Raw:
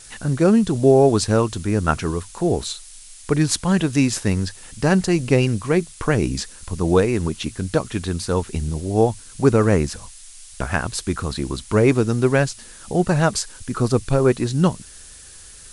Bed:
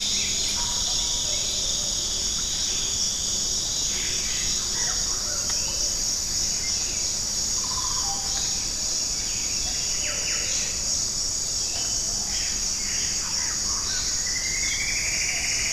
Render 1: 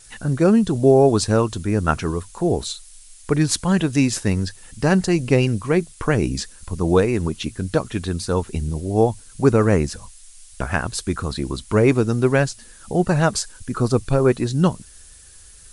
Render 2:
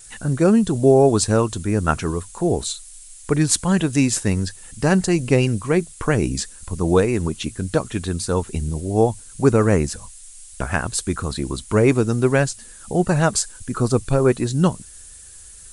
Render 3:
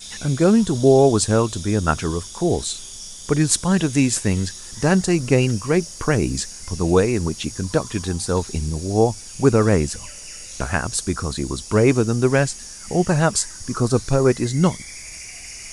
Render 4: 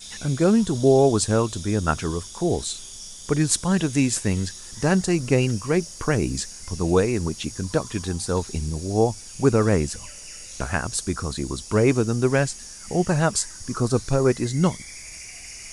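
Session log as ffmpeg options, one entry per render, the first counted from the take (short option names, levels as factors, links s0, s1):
-af "afftdn=nr=6:nf=-42"
-af "aexciter=amount=2.6:drive=1.1:freq=7000"
-filter_complex "[1:a]volume=0.237[s0];[0:a][s0]amix=inputs=2:normalize=0"
-af "volume=0.708"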